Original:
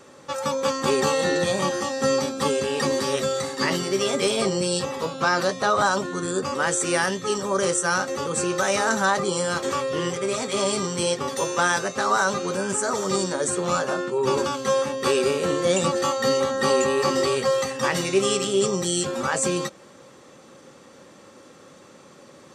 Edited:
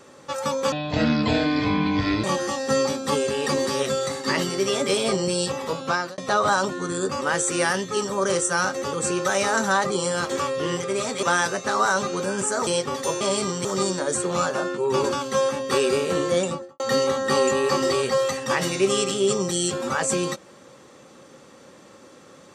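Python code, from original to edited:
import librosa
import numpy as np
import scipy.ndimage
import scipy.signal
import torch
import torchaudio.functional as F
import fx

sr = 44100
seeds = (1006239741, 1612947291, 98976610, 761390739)

y = fx.studio_fade_out(x, sr, start_s=15.61, length_s=0.52)
y = fx.edit(y, sr, fx.speed_span(start_s=0.72, length_s=0.85, speed=0.56),
    fx.fade_out_span(start_s=5.2, length_s=0.31),
    fx.swap(start_s=10.56, length_s=0.44, other_s=11.54, other_length_s=1.44), tone=tone)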